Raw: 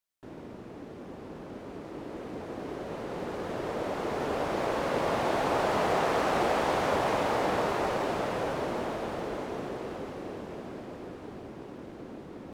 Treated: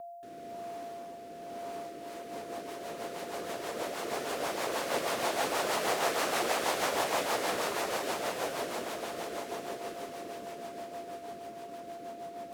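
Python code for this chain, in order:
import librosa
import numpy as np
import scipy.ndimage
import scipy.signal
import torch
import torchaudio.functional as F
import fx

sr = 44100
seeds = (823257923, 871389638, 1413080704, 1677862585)

y = fx.riaa(x, sr, side='recording')
y = y + 10.0 ** (-38.0 / 20.0) * np.sin(2.0 * np.pi * 690.0 * np.arange(len(y)) / sr)
y = fx.rotary_switch(y, sr, hz=1.0, then_hz=6.3, switch_at_s=1.65)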